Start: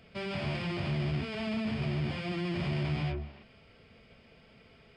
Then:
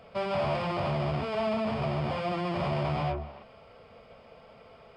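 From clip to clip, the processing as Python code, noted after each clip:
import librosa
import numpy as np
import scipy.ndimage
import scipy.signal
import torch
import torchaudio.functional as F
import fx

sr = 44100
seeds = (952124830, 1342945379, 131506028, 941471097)

y = fx.band_shelf(x, sr, hz=780.0, db=12.0, octaves=1.7)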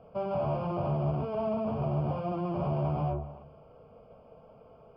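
y = scipy.signal.lfilter(np.full(23, 1.0 / 23), 1.0, x)
y = fx.room_shoebox(y, sr, seeds[0], volume_m3=2500.0, walls='furnished', distance_m=0.51)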